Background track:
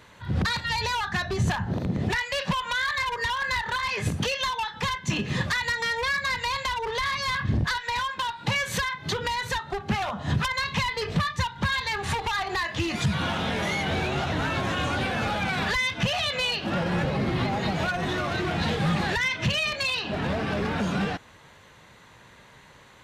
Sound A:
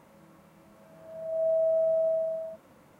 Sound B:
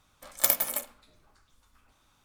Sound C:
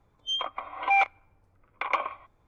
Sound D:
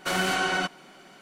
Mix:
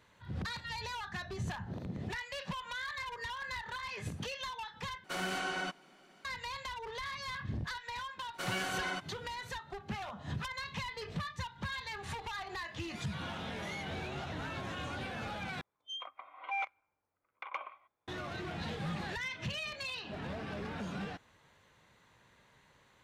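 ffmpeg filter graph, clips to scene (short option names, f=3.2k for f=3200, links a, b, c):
-filter_complex "[4:a]asplit=2[a][b];[0:a]volume=-13.5dB[c];[a]highshelf=f=9.5k:g=-4[d];[3:a]highpass=f=630:p=1[e];[c]asplit=3[f][g][h];[f]atrim=end=5.044[i];[d]atrim=end=1.21,asetpts=PTS-STARTPTS,volume=-10.5dB[j];[g]atrim=start=6.246:end=15.614[k];[e]atrim=end=2.47,asetpts=PTS-STARTPTS,volume=-12.5dB[l];[h]atrim=start=18.076[m];[b]atrim=end=1.21,asetpts=PTS-STARTPTS,volume=-11.5dB,afade=t=in:d=0.02,afade=t=out:st=1.19:d=0.02,adelay=8330[n];[i][j]acrossfade=d=0.004:c1=hsin:c2=hsin[o];[o][k]acrossfade=d=0.004:c1=hsin:c2=hsin[p];[p][l]acrossfade=d=0.004:c1=hsin:c2=hsin[q];[q][m]acrossfade=d=0.004:c1=hsin:c2=hsin[r];[r][n]amix=inputs=2:normalize=0"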